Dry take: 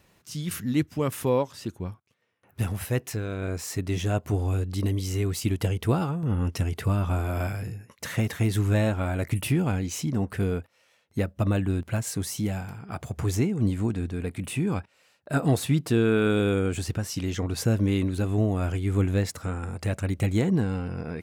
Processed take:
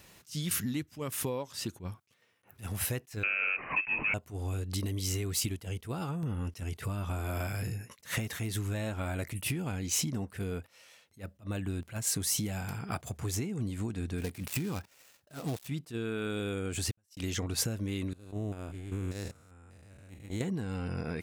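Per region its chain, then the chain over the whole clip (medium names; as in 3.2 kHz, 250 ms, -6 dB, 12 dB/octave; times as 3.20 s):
3.23–4.14 s: brick-wall FIR high-pass 260 Hz + waveshaping leveller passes 3 + frequency inversion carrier 2.9 kHz
14.18–15.68 s: dead-time distortion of 0.14 ms + treble shelf 11 kHz +3.5 dB
16.91–17.35 s: gate -33 dBFS, range -54 dB + treble shelf 9.6 kHz +6 dB
18.13–20.41 s: spectrogram pixelated in time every 200 ms + gate -25 dBFS, range -25 dB + compression 2:1, threshold -33 dBFS
whole clip: compression 12:1, threshold -33 dBFS; treble shelf 2.3 kHz +8 dB; attacks held to a fixed rise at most 260 dB/s; trim +2 dB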